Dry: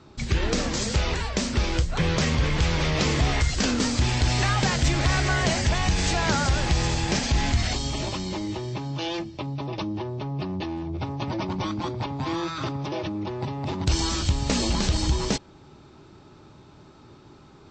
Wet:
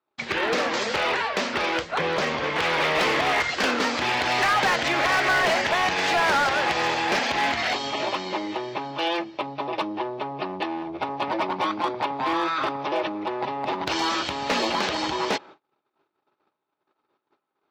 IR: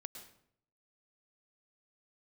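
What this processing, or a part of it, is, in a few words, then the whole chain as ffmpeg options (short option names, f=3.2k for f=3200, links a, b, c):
walkie-talkie: -filter_complex "[0:a]asettb=1/sr,asplit=3[a][b][c];[a]atrim=end=1.984[d];[b]atrim=start=1.98:end=2.56,asetpts=PTS-STARTPTS,afade=t=in:d=0.004:c=qsin,afade=t=out:st=0.576:d=0.004:c=qsin,equalizer=f=2.2k:w=0.53:g=-5[e];[c]atrim=start=2.556[f];[d][e]acrossfade=d=0.004:c1=hsin:c2=qsin[g];[g][f]acrossfade=d=0.004:c1=qsin:c2=hsin,highpass=530,lowpass=2.7k,asoftclip=type=hard:threshold=-26dB,agate=range=-35dB:threshold=-52dB:ratio=16:detection=peak,volume=9dB"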